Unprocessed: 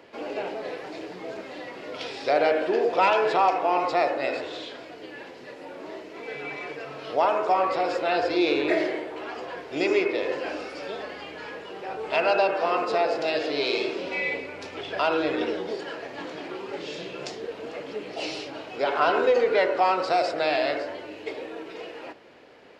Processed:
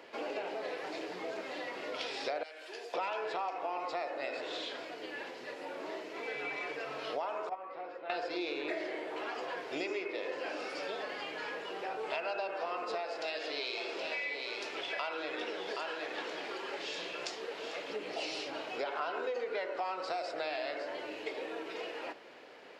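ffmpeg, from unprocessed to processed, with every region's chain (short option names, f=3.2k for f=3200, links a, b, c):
-filter_complex "[0:a]asettb=1/sr,asplit=3[a][b][c];[a]atrim=end=2.434[d];[b]atrim=start=2.43:end=2.94,asetpts=PTS-STARTPTS,afade=t=in:d=0.004:c=qsin,afade=t=out:st=0.506:d=0.004:c=qsin,highpass=f=260:t=q:w=1.6,aderivative[e];[c]atrim=start=2.936[f];[d][e]acrossfade=d=0.004:c1=hsin:c2=qsin[g];[g][f]acrossfade=d=0.004:c1=qsin:c2=hsin,asettb=1/sr,asplit=3[h][i][j];[h]atrim=end=7.494[k];[i]atrim=start=7.49:end=8.1,asetpts=PTS-STARTPTS,afade=t=in:d=0.004:c=qsin,afade=t=out:st=0.606:d=0.004:c=qsin,lowpass=2.3k,agate=range=-16dB:threshold=-19dB:ratio=16:release=100:detection=peak[l];[j]atrim=start=8.096[m];[k][l]acrossfade=d=0.004:c1=hsin:c2=qsin[n];[n][m]acrossfade=d=0.004:c1=qsin:c2=hsin,asettb=1/sr,asplit=3[o][p][q];[o]atrim=end=13.004[r];[p]atrim=start=13:end=17.9,asetpts=PTS-STARTPTS,afade=t=in:d=0.004:c=qsin,afade=t=out:st=4.896:d=0.004:c=qsin,lowshelf=f=490:g=-8.5,aecho=1:1:772:0.398,atrim=end_sample=216090[s];[q]atrim=start=17.896[t];[r][s]acrossfade=d=0.004:c1=hsin:c2=qsin[u];[u][t]acrossfade=d=0.004:c1=qsin:c2=hsin,highpass=f=440:p=1,acompressor=threshold=-35dB:ratio=5"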